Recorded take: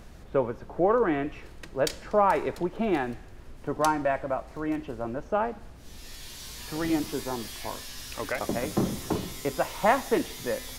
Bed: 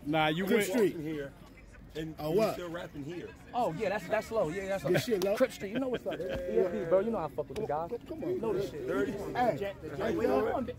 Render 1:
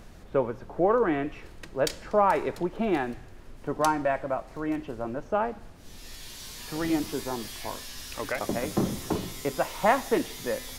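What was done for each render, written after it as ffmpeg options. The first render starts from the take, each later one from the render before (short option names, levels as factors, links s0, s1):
-af "bandreject=f=60:t=h:w=4,bandreject=f=120:t=h:w=4"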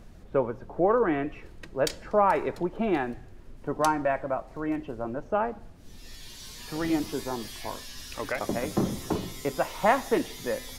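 -af "afftdn=nr=6:nf=-48"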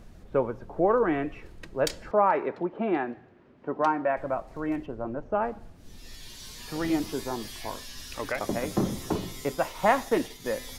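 -filter_complex "[0:a]asettb=1/sr,asplit=3[s0][s1][s2];[s0]atrim=end=2.114[s3];[s1]atrim=start=2.11:end=4.17,asetpts=PTS-STARTPTS,afade=t=in:d=0.004:c=qsin,afade=t=out:st=2.056:d=0.004:c=qsin,highpass=190,lowpass=2500[s4];[s2]atrim=start=4.166[s5];[s3][s4]acrossfade=d=0.004:c1=hsin:c2=qsin[s6];[s6][s5]acrossfade=d=0.004:c1=qsin:c2=hsin,asettb=1/sr,asplit=3[s7][s8][s9];[s7]atrim=end=4.864[s10];[s8]atrim=start=4.86:end=5.42,asetpts=PTS-STARTPTS,afade=t=in:d=0.004:c=qsin,afade=t=out:st=0.556:d=0.004:c=qsin,lowpass=f=1800:p=1[s11];[s9]atrim=start=5.416[s12];[s10][s11]acrossfade=d=0.004:c1=hsin:c2=qsin[s13];[s13][s12]acrossfade=d=0.004:c1=qsin:c2=hsin,asettb=1/sr,asplit=3[s14][s15][s16];[s14]atrim=end=9.454[s17];[s15]atrim=start=9.45:end=10.46,asetpts=PTS-STARTPTS,afade=t=in:d=0.004:c=qsin,afade=t=out:st=1.006:d=0.004:c=qsin,agate=range=0.0224:threshold=0.0141:ratio=3:release=100:detection=peak[s18];[s16]atrim=start=10.456[s19];[s17][s18]acrossfade=d=0.004:c1=hsin:c2=qsin[s20];[s20][s19]acrossfade=d=0.004:c1=qsin:c2=hsin"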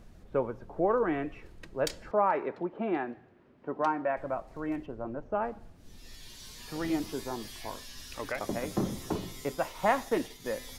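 -af "volume=0.631"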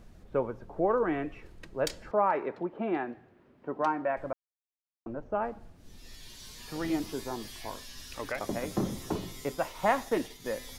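-filter_complex "[0:a]asplit=3[s0][s1][s2];[s0]atrim=end=4.33,asetpts=PTS-STARTPTS,afade=t=out:st=4.326:d=0.004:c=hsin[s3];[s1]atrim=start=4.33:end=5.06,asetpts=PTS-STARTPTS,volume=0[s4];[s2]atrim=start=5.06,asetpts=PTS-STARTPTS,afade=t=in:d=0.004:c=hsin[s5];[s3][s4][s5]concat=n=3:v=0:a=1"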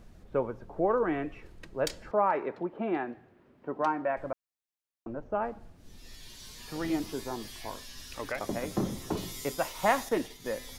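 -filter_complex "[0:a]asettb=1/sr,asplit=3[s0][s1][s2];[s0]atrim=end=9.174[s3];[s1]atrim=start=9.17:end=10.09,asetpts=PTS-STARTPTS,afade=t=in:d=0.004:c=qsin,afade=t=out:st=0.916:d=0.004:c=qsin,highshelf=f=3100:g=7.5[s4];[s2]atrim=start=10.086[s5];[s3][s4]acrossfade=d=0.004:c1=hsin:c2=qsin[s6];[s6][s5]acrossfade=d=0.004:c1=qsin:c2=hsin"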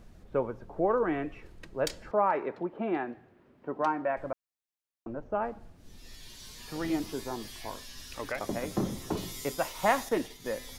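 -af anull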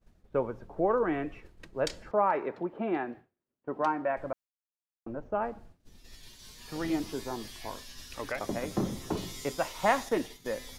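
-filter_complex "[0:a]agate=range=0.0224:threshold=0.00708:ratio=3:detection=peak,acrossover=split=8900[s0][s1];[s1]acompressor=threshold=0.002:ratio=4:attack=1:release=60[s2];[s0][s2]amix=inputs=2:normalize=0"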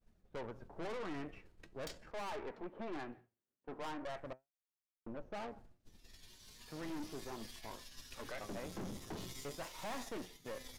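-af "flanger=delay=4:depth=7.3:regen=74:speed=0.4:shape=triangular,aeval=exprs='(tanh(112*val(0)+0.65)-tanh(0.65))/112':c=same"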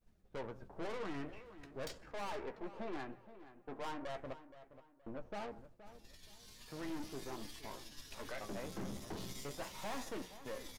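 -filter_complex "[0:a]asplit=2[s0][s1];[s1]adelay=15,volume=0.282[s2];[s0][s2]amix=inputs=2:normalize=0,asplit=2[s3][s4];[s4]adelay=472,lowpass=f=3000:p=1,volume=0.2,asplit=2[s5][s6];[s6]adelay=472,lowpass=f=3000:p=1,volume=0.33,asplit=2[s7][s8];[s8]adelay=472,lowpass=f=3000:p=1,volume=0.33[s9];[s3][s5][s7][s9]amix=inputs=4:normalize=0"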